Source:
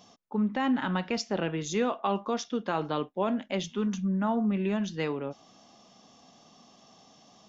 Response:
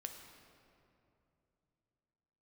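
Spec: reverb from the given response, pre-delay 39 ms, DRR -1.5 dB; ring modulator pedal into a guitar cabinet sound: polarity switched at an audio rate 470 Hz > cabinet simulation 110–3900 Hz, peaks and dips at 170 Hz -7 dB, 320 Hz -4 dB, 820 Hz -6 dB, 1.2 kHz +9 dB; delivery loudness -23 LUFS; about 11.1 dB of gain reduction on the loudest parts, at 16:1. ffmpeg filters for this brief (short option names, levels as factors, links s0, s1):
-filter_complex "[0:a]acompressor=threshold=0.02:ratio=16,asplit=2[s0][s1];[1:a]atrim=start_sample=2205,adelay=39[s2];[s1][s2]afir=irnorm=-1:irlink=0,volume=1.68[s3];[s0][s3]amix=inputs=2:normalize=0,aeval=exprs='val(0)*sgn(sin(2*PI*470*n/s))':c=same,highpass=110,equalizer=f=170:t=q:w=4:g=-7,equalizer=f=320:t=q:w=4:g=-4,equalizer=f=820:t=q:w=4:g=-6,equalizer=f=1200:t=q:w=4:g=9,lowpass=f=3900:w=0.5412,lowpass=f=3900:w=1.3066,volume=3.98"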